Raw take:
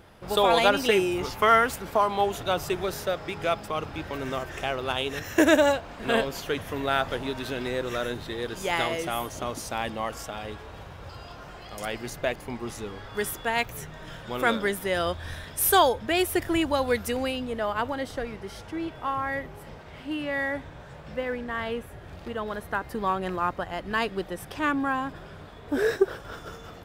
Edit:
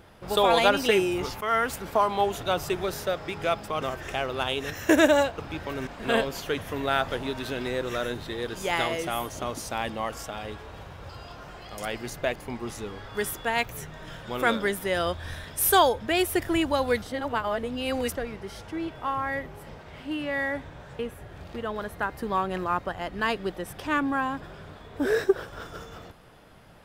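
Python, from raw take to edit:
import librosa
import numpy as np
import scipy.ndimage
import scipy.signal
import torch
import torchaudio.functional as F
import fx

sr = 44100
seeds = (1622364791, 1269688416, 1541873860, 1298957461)

y = fx.edit(x, sr, fx.fade_in_from(start_s=1.41, length_s=0.35, floor_db=-12.5),
    fx.move(start_s=3.82, length_s=0.49, to_s=5.87),
    fx.reverse_span(start_s=17.02, length_s=1.13),
    fx.cut(start_s=20.99, length_s=0.72), tone=tone)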